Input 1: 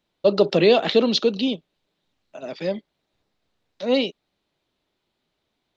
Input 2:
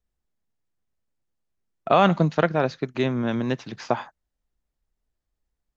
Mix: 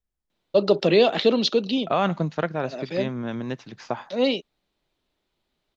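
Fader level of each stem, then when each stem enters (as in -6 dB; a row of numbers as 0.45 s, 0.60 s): -1.5 dB, -5.0 dB; 0.30 s, 0.00 s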